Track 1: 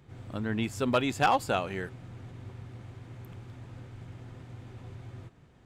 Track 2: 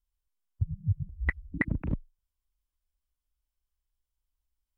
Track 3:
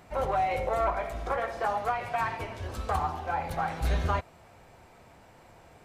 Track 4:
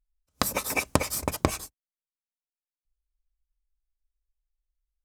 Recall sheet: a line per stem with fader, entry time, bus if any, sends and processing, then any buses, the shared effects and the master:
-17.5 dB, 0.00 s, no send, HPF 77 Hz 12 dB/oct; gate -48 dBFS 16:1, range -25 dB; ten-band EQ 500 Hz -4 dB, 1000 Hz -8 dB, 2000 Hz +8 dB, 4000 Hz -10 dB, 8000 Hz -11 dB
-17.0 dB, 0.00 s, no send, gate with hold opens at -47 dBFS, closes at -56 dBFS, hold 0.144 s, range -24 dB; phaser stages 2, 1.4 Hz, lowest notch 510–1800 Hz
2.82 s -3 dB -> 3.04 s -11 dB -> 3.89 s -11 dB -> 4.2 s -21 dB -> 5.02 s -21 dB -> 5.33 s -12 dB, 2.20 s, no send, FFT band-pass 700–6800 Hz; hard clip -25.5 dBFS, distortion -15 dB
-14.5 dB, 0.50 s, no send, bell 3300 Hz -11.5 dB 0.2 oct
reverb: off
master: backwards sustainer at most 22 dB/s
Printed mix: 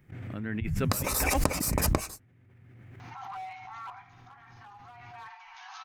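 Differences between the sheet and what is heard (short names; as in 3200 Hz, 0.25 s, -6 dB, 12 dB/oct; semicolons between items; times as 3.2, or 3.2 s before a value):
stem 2 -17.0 dB -> -7.5 dB; stem 3: entry 2.20 s -> 3.00 s; stem 4 -14.5 dB -> -4.0 dB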